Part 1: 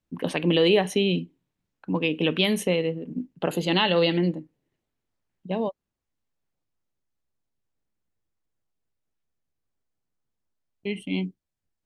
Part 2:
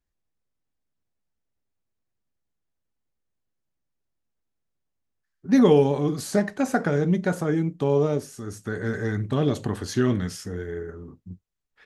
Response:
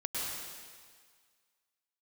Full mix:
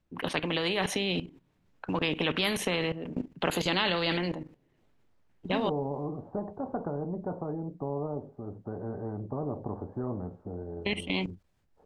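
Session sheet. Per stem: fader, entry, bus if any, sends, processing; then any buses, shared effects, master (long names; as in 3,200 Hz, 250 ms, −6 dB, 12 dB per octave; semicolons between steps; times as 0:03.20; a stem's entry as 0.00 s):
−1.5 dB, 0.00 s, no send, output level in coarse steps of 15 dB
−16.5 dB, 0.00 s, no send, Butterworth low-pass 870 Hz 36 dB per octave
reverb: not used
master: low-pass filter 2,500 Hz 6 dB per octave; automatic gain control gain up to 7.5 dB; every bin compressed towards the loudest bin 2 to 1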